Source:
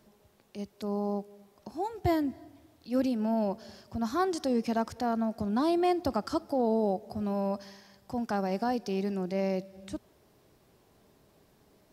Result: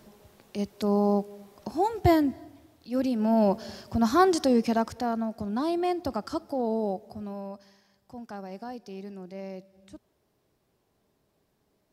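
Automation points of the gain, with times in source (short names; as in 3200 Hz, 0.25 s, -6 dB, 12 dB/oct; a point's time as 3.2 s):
1.9 s +8 dB
2.96 s 0 dB
3.48 s +8 dB
4.3 s +8 dB
5.32 s -1 dB
6.92 s -1 dB
7.56 s -9 dB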